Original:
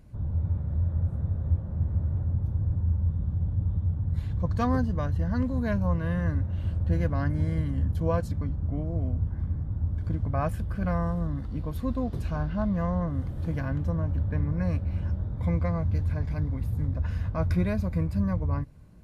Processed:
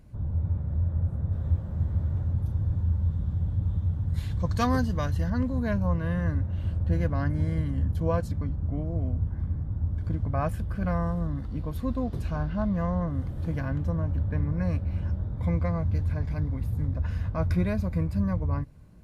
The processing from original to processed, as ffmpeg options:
ffmpeg -i in.wav -filter_complex "[0:a]asettb=1/sr,asplit=3[link_01][link_02][link_03];[link_01]atrim=end=1.324[link_04];[link_02]atrim=start=1.32:end=5.3,asetpts=PTS-STARTPTS,afade=type=in:duration=0.004:curve=qsin,afade=type=out:start_time=3.976:duration=0.004:curve=qsin,highshelf=frequency=2200:gain=12[link_05];[link_03]atrim=start=5.296[link_06];[link_04][link_05]acrossfade=duration=0.004:curve1=hsin:curve2=qsin[link_07];[link_07][link_06]acrossfade=duration=0.004:curve1=qsin:curve2=hsin" out.wav

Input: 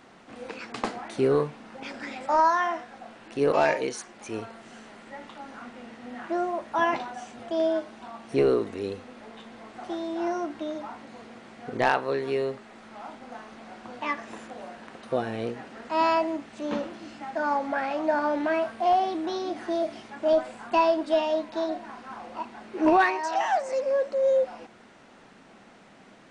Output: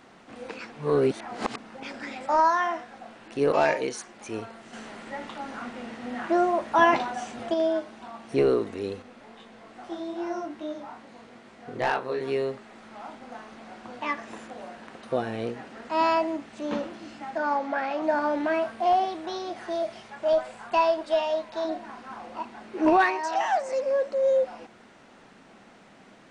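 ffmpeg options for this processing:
ffmpeg -i in.wav -filter_complex "[0:a]asettb=1/sr,asplit=3[link_01][link_02][link_03];[link_01]atrim=end=4.734[link_04];[link_02]atrim=start=4.73:end=7.54,asetpts=PTS-STARTPTS,afade=type=in:duration=0.004:curve=qsin,afade=type=out:start_time=2.806:duration=0.004:curve=qsin,acontrast=34[link_05];[link_03]atrim=start=7.536[link_06];[link_04][link_05]acrossfade=duration=0.004:curve1=hsin:curve2=qsin[link_07];[link_07][link_06]acrossfade=duration=0.004:curve1=qsin:curve2=hsin,asettb=1/sr,asplit=3[link_08][link_09][link_10];[link_08]atrim=end=9.024[link_11];[link_09]atrim=start=9.02:end=12.21,asetpts=PTS-STARTPTS,afade=type=in:duration=0.004:curve=qsin,afade=type=out:start_time=3.186:duration=0.004:curve=qsin,flanger=delay=19.5:depth=5.2:speed=2.4[link_12];[link_10]atrim=start=12.206[link_13];[link_11][link_12]acrossfade=duration=0.004:curve1=hsin:curve2=qsin[link_14];[link_14][link_13]acrossfade=duration=0.004:curve1=qsin:curve2=hsin,asettb=1/sr,asplit=3[link_15][link_16][link_17];[link_15]atrim=end=17.384[link_18];[link_16]atrim=start=17.38:end=18.02,asetpts=PTS-STARTPTS,afade=type=in:duration=0.004:curve=qsin,afade=type=out:start_time=0.636:duration=0.004:curve=qsin,highpass=200,lowpass=6600[link_19];[link_17]atrim=start=18.016[link_20];[link_18][link_19]acrossfade=duration=0.004:curve1=hsin:curve2=qsin[link_21];[link_21][link_20]acrossfade=duration=0.004:curve1=qsin:curve2=hsin,asettb=1/sr,asplit=3[link_22][link_23][link_24];[link_22]atrim=end=19.054[link_25];[link_23]atrim=start=19.05:end=21.65,asetpts=PTS-STARTPTS,afade=type=in:duration=0.004:curve=qsin,afade=type=out:start_time=2.596:duration=0.004:curve=qsin,equalizer=frequency=280:width_type=o:width=0.42:gain=-15[link_26];[link_24]atrim=start=21.646[link_27];[link_25][link_26]acrossfade=duration=0.004:curve1=hsin:curve2=qsin[link_28];[link_28][link_27]acrossfade=duration=0.004:curve1=qsin:curve2=hsin,asplit=3[link_29][link_30][link_31];[link_29]atrim=end=0.722[link_32];[link_30]atrim=start=0.718:end=1.582,asetpts=PTS-STARTPTS,areverse[link_33];[link_31]atrim=start=1.578[link_34];[link_32][link_33]acrossfade=duration=0.004:curve1=hsin:curve2=hsin[link_35];[link_35][link_34]acrossfade=duration=0.004:curve1=hsin:curve2=hsin" out.wav

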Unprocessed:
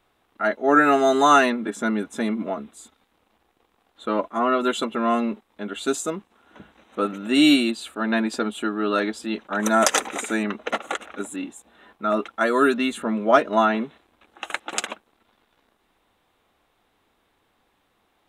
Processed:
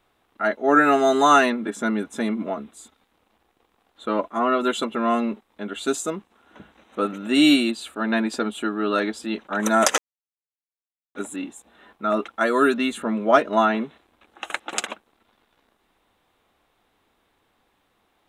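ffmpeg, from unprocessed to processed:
ffmpeg -i in.wav -filter_complex "[0:a]asplit=3[link_01][link_02][link_03];[link_01]atrim=end=9.98,asetpts=PTS-STARTPTS,afade=type=out:start_time=9.976:duration=0.004:curve=hsin[link_04];[link_02]atrim=start=9.98:end=11.15,asetpts=PTS-STARTPTS,volume=0[link_05];[link_03]atrim=start=11.15,asetpts=PTS-STARTPTS,afade=type=in:duration=0.004:curve=hsin[link_06];[link_04][link_05][link_06]concat=n=3:v=0:a=1" out.wav

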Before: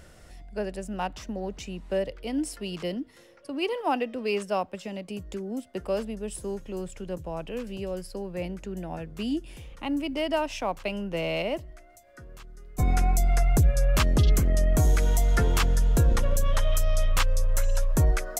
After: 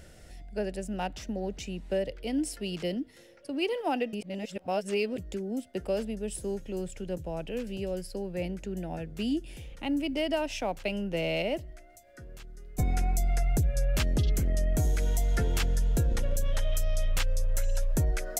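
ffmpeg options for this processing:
ffmpeg -i in.wav -filter_complex "[0:a]asplit=3[link_01][link_02][link_03];[link_01]atrim=end=4.132[link_04];[link_02]atrim=start=4.128:end=5.182,asetpts=PTS-STARTPTS,areverse[link_05];[link_03]atrim=start=5.178[link_06];[link_04][link_05]acrossfade=duration=0.004:curve1=hsin:curve2=hsin[link_07];[link_07][link_06]acrossfade=duration=0.004:curve1=hsin:curve2=hsin,equalizer=frequency=1100:width_type=o:width=0.5:gain=-11,acompressor=threshold=-23dB:ratio=6" out.wav

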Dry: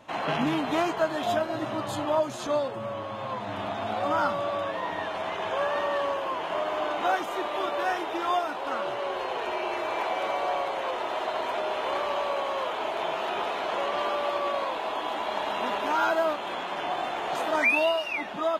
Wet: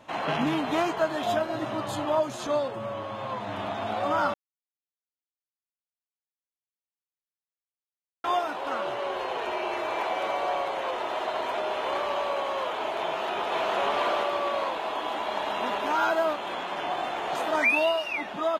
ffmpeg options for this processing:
ffmpeg -i in.wav -filter_complex "[0:a]asplit=2[link_01][link_02];[link_02]afade=type=in:start_time=13.04:duration=0.01,afade=type=out:start_time=13.76:duration=0.01,aecho=0:1:470|940|1410|1880|2350:0.944061|0.377624|0.15105|0.0604199|0.024168[link_03];[link_01][link_03]amix=inputs=2:normalize=0,asplit=3[link_04][link_05][link_06];[link_04]atrim=end=4.34,asetpts=PTS-STARTPTS,afade=type=out:start_time=4.336:duration=0.004:curve=hsin[link_07];[link_05]atrim=start=4.34:end=8.24,asetpts=PTS-STARTPTS,volume=0[link_08];[link_06]atrim=start=8.24,asetpts=PTS-STARTPTS,afade=type=in:duration=0.004:curve=hsin[link_09];[link_07][link_08][link_09]concat=n=3:v=0:a=1" out.wav

